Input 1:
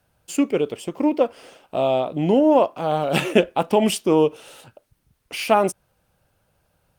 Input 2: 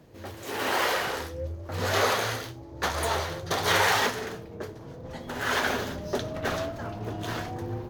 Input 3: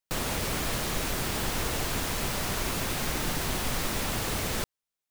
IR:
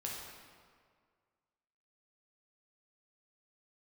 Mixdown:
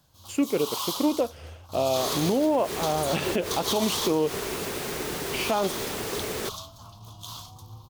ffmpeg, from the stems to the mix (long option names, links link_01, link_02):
-filter_complex "[0:a]highshelf=frequency=8300:gain=-9,volume=-2.5dB,asplit=2[link_01][link_02];[1:a]firequalizer=gain_entry='entry(110,0);entry(380,-19);entry(1100,7);entry(1700,-25);entry(3300,10);entry(11000,13)':delay=0.05:min_phase=1,volume=-8.5dB[link_03];[2:a]highpass=frequency=140:poles=1,equalizer=frequency=410:width=3.2:gain=12,adelay=1850,volume=-2dB[link_04];[link_02]apad=whole_len=306918[link_05];[link_04][link_05]sidechaincompress=threshold=-21dB:ratio=8:attack=20:release=108[link_06];[link_01][link_03][link_06]amix=inputs=3:normalize=0,alimiter=limit=-14.5dB:level=0:latency=1:release=113"